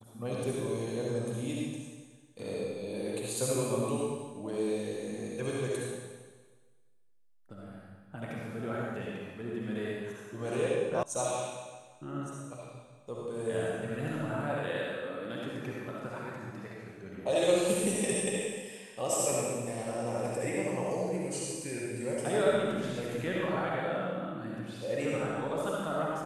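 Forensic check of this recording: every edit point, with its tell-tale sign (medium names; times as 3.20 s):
11.03 s: sound stops dead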